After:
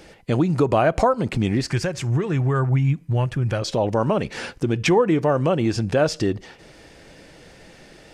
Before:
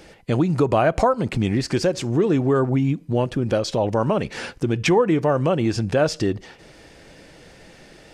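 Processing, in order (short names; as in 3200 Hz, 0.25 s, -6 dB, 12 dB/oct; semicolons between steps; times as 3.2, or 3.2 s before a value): 1.7–3.62 ten-band EQ 125 Hz +7 dB, 250 Hz -9 dB, 500 Hz -6 dB, 2000 Hz +4 dB, 4000 Hz -5 dB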